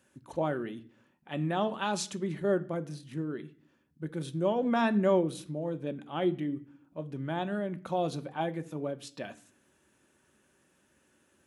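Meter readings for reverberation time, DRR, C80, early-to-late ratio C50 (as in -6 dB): 0.50 s, 9.0 dB, 22.5 dB, 19.0 dB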